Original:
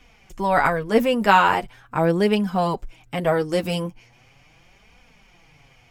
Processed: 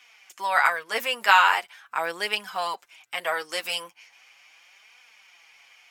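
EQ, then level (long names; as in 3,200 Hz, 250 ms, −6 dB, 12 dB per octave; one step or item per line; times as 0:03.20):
high-pass filter 1,300 Hz 12 dB per octave
+3.5 dB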